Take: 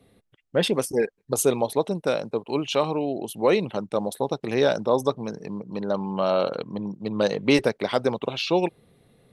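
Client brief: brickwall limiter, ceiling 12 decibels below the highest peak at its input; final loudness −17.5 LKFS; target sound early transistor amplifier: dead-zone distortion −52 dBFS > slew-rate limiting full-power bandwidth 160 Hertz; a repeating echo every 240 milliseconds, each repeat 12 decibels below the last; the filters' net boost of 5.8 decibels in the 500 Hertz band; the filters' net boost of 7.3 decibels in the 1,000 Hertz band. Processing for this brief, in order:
parametric band 500 Hz +5 dB
parametric band 1,000 Hz +7.5 dB
brickwall limiter −14 dBFS
repeating echo 240 ms, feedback 25%, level −12 dB
dead-zone distortion −52 dBFS
slew-rate limiting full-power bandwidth 160 Hz
level +8.5 dB

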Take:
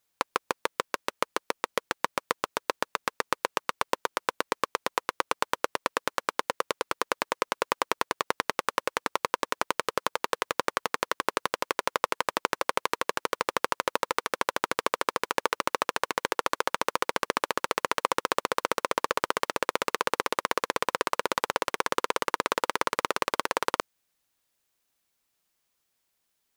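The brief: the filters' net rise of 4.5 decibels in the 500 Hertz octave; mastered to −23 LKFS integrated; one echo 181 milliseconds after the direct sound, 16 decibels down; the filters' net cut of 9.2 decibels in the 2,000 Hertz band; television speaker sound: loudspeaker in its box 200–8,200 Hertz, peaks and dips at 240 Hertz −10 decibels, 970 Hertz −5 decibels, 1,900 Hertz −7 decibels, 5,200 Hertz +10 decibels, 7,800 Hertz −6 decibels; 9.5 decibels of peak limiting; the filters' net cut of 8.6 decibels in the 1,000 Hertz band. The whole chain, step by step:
parametric band 500 Hz +7.5 dB
parametric band 1,000 Hz −7 dB
parametric band 2,000 Hz −6.5 dB
brickwall limiter −14.5 dBFS
loudspeaker in its box 200–8,200 Hz, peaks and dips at 240 Hz −10 dB, 970 Hz −5 dB, 1,900 Hz −7 dB, 5,200 Hz +10 dB, 7,800 Hz −6 dB
single-tap delay 181 ms −16 dB
level +15.5 dB

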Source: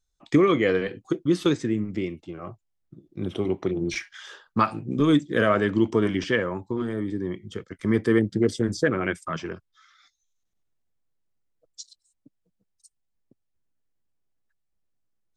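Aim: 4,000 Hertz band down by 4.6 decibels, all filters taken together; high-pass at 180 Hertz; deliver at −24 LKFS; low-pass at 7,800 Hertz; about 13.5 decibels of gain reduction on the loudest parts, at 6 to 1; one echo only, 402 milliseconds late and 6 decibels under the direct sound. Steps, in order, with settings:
high-pass filter 180 Hz
low-pass filter 7,800 Hz
parametric band 4,000 Hz −6 dB
downward compressor 6 to 1, threshold −31 dBFS
single-tap delay 402 ms −6 dB
level +11.5 dB

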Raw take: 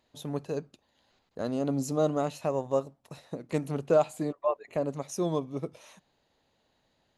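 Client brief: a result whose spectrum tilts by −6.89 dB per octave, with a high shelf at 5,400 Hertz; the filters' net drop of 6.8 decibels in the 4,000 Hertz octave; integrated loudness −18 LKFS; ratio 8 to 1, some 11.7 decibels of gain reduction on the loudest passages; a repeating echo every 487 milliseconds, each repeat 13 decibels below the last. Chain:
parametric band 4,000 Hz −6.5 dB
high-shelf EQ 5,400 Hz −4.5 dB
downward compressor 8 to 1, threshold −30 dBFS
repeating echo 487 ms, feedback 22%, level −13 dB
level +19 dB

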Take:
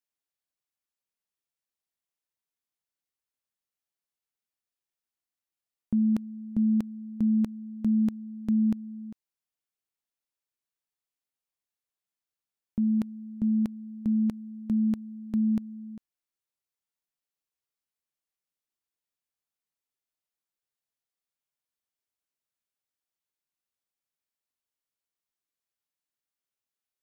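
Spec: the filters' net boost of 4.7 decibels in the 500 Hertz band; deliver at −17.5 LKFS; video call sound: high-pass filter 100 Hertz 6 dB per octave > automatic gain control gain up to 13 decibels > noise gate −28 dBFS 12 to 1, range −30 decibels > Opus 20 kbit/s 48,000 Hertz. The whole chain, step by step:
high-pass filter 100 Hz 6 dB per octave
parametric band 500 Hz +6.5 dB
automatic gain control gain up to 13 dB
noise gate −28 dBFS 12 to 1, range −30 dB
Opus 20 kbit/s 48,000 Hz

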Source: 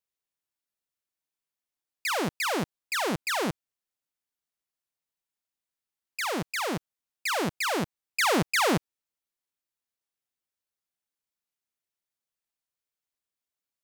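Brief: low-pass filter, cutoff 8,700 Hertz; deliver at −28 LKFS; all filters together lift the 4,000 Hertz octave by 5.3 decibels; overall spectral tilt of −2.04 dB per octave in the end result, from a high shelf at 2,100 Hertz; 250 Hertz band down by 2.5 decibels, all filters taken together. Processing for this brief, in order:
low-pass filter 8,700 Hz
parametric band 250 Hz −3.5 dB
high-shelf EQ 2,100 Hz +4 dB
parametric band 4,000 Hz +3 dB
level −1.5 dB

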